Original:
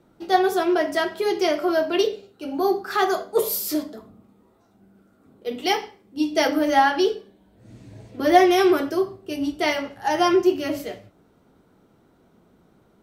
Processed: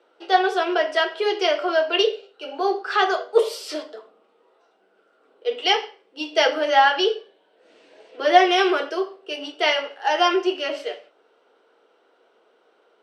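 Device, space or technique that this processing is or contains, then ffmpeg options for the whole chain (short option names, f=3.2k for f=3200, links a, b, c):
phone speaker on a table: -af "highpass=f=430:w=0.5412,highpass=f=430:w=1.3066,equalizer=f=470:t=q:w=4:g=6,equalizer=f=1.5k:t=q:w=4:g=4,equalizer=f=2.9k:t=q:w=4:g=9,equalizer=f=6.8k:t=q:w=4:g=-9,lowpass=f=7.4k:w=0.5412,lowpass=f=7.4k:w=1.3066,volume=1dB"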